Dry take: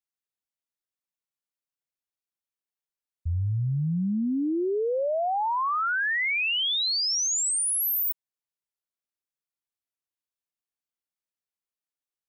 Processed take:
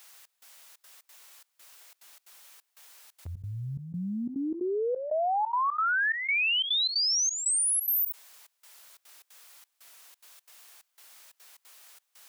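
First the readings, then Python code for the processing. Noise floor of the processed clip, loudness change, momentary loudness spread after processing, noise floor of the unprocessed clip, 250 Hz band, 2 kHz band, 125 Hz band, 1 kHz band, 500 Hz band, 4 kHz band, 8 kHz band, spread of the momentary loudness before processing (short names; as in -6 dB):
-78 dBFS, -1.5 dB, 14 LU, under -85 dBFS, -6.5 dB, -1.0 dB, -10.0 dB, -1.5 dB, -3.0 dB, -1.0 dB, -1.0 dB, 5 LU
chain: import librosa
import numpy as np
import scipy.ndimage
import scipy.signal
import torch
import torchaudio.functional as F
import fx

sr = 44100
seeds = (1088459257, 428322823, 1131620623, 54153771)

y = scipy.signal.sosfilt(scipy.signal.butter(2, 670.0, 'highpass', fs=sr, output='sos'), x)
y = fx.step_gate(y, sr, bpm=179, pattern='xxx..xxxx.xx.x', floor_db=-24.0, edge_ms=4.5)
y = fx.env_flatten(y, sr, amount_pct=70)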